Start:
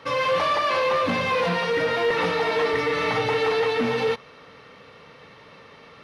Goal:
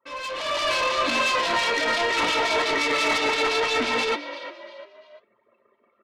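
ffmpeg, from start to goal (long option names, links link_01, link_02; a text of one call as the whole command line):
ffmpeg -i in.wav -filter_complex "[0:a]anlmdn=1.58,highpass=280,lowpass=5000,asplit=4[link_01][link_02][link_03][link_04];[link_02]adelay=346,afreqshift=54,volume=-16dB[link_05];[link_03]adelay=692,afreqshift=108,volume=-24.4dB[link_06];[link_04]adelay=1038,afreqshift=162,volume=-32.8dB[link_07];[link_01][link_05][link_06][link_07]amix=inputs=4:normalize=0,alimiter=limit=-16.5dB:level=0:latency=1:release=30,aecho=1:1:3.1:0.74,asoftclip=type=tanh:threshold=-23.5dB,dynaudnorm=framelen=210:gausssize=5:maxgain=10.5dB,acrossover=split=2300[link_08][link_09];[link_08]aeval=exprs='val(0)*(1-0.5/2+0.5/2*cos(2*PI*5.8*n/s))':channel_layout=same[link_10];[link_09]aeval=exprs='val(0)*(1-0.5/2-0.5/2*cos(2*PI*5.8*n/s))':channel_layout=same[link_11];[link_10][link_11]amix=inputs=2:normalize=0,flanger=delay=7.9:depth=5:regen=-66:speed=0.71:shape=sinusoidal,adynamicequalizer=threshold=0.01:dfrequency=2600:dqfactor=0.7:tfrequency=2600:tqfactor=0.7:attack=5:release=100:ratio=0.375:range=3.5:mode=boostabove:tftype=highshelf" out.wav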